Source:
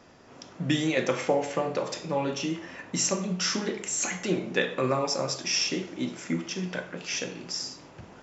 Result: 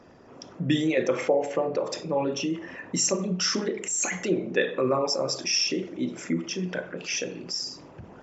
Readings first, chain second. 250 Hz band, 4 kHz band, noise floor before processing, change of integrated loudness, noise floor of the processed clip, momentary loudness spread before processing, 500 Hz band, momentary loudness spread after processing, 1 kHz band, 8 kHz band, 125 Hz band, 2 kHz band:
+2.0 dB, +1.5 dB, -51 dBFS, +2.0 dB, -49 dBFS, 9 LU, +3.0 dB, 9 LU, -0.5 dB, n/a, 0.0 dB, 0.0 dB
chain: formant sharpening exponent 1.5; gain +2 dB

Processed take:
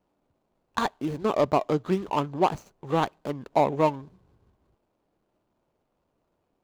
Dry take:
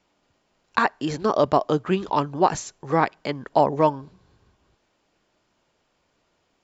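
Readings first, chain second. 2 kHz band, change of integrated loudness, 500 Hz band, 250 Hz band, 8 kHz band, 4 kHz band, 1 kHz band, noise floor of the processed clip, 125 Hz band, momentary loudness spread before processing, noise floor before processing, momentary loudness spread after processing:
-7.5 dB, -3.5 dB, -3.0 dB, -3.0 dB, n/a, -3.5 dB, -4.5 dB, -76 dBFS, -2.5 dB, 7 LU, -70 dBFS, 9 LU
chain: median filter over 25 samples; gain -2.5 dB

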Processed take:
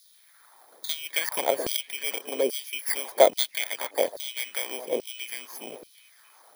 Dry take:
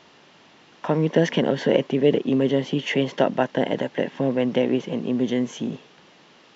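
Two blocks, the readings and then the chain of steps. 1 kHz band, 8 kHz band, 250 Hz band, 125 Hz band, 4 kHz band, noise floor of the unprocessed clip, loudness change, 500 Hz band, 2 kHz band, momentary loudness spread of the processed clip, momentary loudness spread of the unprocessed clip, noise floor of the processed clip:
-1.5 dB, n/a, -20.5 dB, under -30 dB, +2.0 dB, -53 dBFS, -4.5 dB, -5.0 dB, -1.5 dB, 15 LU, 7 LU, -58 dBFS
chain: FFT order left unsorted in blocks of 16 samples; harmonic-percussive split harmonic -9 dB; on a send: delay with a stepping band-pass 0.21 s, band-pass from 300 Hz, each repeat 1.4 oct, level -11 dB; on the sum: LFO high-pass saw down 1.2 Hz 420–4700 Hz

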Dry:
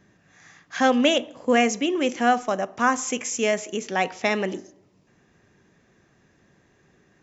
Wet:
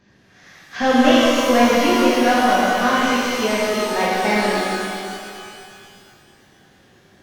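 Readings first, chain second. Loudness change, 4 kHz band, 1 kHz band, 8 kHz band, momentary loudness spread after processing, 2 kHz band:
+6.0 dB, +7.0 dB, +6.5 dB, n/a, 15 LU, +6.5 dB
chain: CVSD 32 kbps; shimmer reverb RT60 2.4 s, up +12 st, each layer -8 dB, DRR -7.5 dB; gain -1 dB

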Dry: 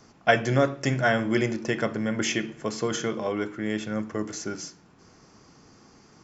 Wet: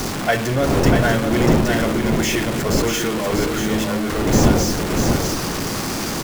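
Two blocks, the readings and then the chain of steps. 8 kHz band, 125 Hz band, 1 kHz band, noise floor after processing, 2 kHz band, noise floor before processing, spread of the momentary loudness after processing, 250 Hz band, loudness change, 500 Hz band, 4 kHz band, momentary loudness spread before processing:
n/a, +11.5 dB, +8.0 dB, -24 dBFS, +5.5 dB, -56 dBFS, 6 LU, +10.0 dB, +8.0 dB, +7.5 dB, +10.5 dB, 10 LU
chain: zero-crossing step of -18.5 dBFS; wind noise 370 Hz -21 dBFS; on a send: echo 0.64 s -5 dB; on the sum: gain -1.5 dB

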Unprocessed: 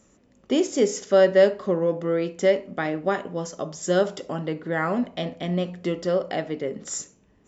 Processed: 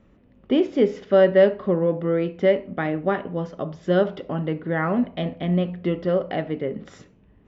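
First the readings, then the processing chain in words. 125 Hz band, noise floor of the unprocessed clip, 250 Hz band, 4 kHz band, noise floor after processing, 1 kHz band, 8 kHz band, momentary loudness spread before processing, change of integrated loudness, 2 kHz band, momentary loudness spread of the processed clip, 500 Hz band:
+5.0 dB, -60 dBFS, +3.5 dB, -2.5 dB, -56 dBFS, +0.5 dB, n/a, 12 LU, +1.5 dB, 0.0 dB, 11 LU, +1.0 dB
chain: LPF 3400 Hz 24 dB/oct; low shelf 180 Hz +9.5 dB

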